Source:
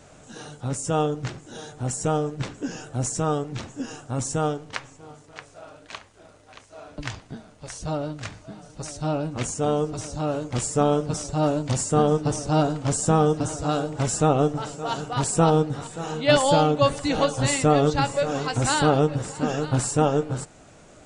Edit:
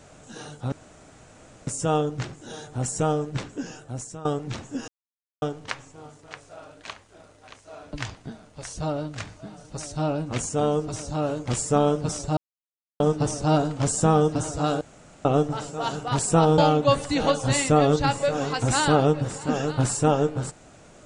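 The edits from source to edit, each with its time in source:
0.72 s: insert room tone 0.95 s
2.43–3.30 s: fade out, to -17.5 dB
3.93–4.47 s: mute
11.42–12.05 s: mute
13.86–14.30 s: room tone
15.63–16.52 s: delete

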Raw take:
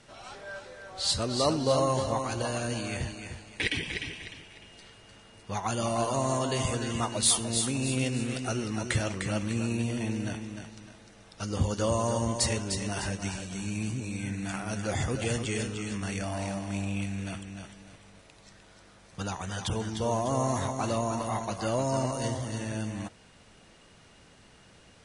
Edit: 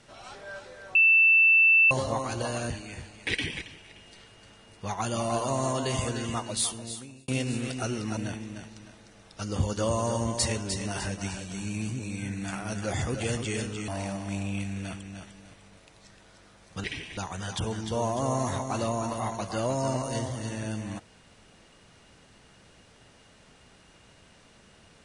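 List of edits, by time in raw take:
0.95–1.91 s: bleep 2.66 kHz -15.5 dBFS
2.70–3.03 s: delete
3.94–4.27 s: move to 19.26 s
6.83–7.94 s: fade out
8.83–10.18 s: delete
15.89–16.30 s: delete

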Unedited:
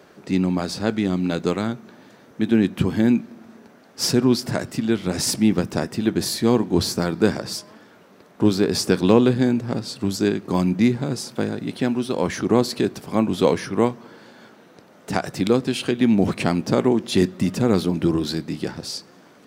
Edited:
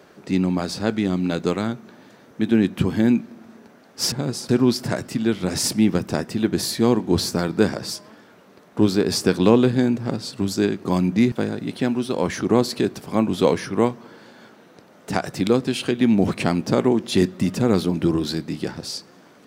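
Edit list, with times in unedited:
10.95–11.32 s: move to 4.12 s

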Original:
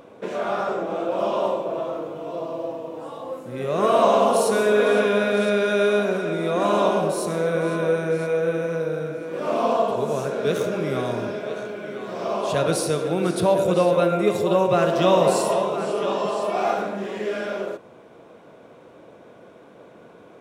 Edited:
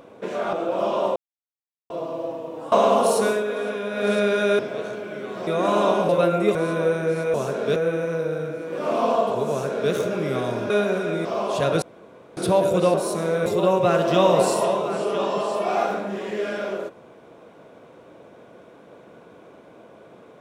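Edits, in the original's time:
0.53–0.93 s: delete
1.56–2.30 s: mute
3.12–4.02 s: delete
4.57–5.39 s: dip -8.5 dB, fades 0.17 s
5.89–6.44 s: swap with 11.31–12.19 s
7.06–7.58 s: swap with 13.88–14.34 s
10.11–10.53 s: copy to 8.37 s
12.76–13.31 s: room tone

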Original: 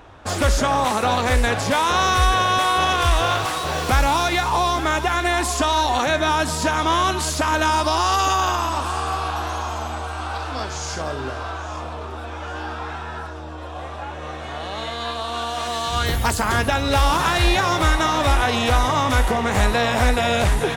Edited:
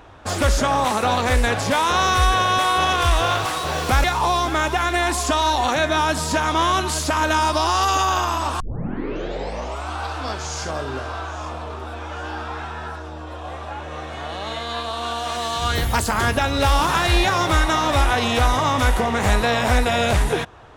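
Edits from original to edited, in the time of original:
4.04–4.35 s: delete
8.91 s: tape start 1.32 s

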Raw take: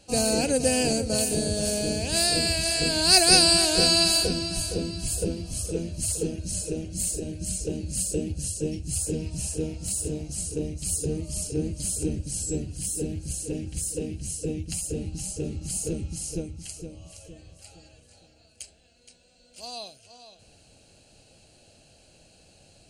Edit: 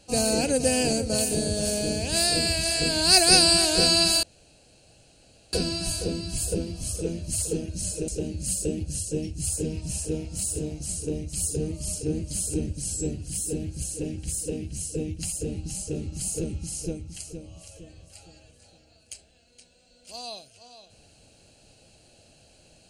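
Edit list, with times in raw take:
4.23 s: insert room tone 1.30 s
6.78–7.57 s: delete

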